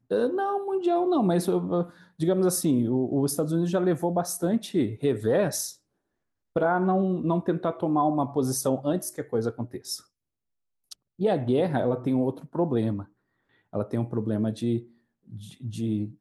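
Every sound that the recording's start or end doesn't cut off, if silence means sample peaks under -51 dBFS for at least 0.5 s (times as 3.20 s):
6.56–10.04 s
10.91–13.08 s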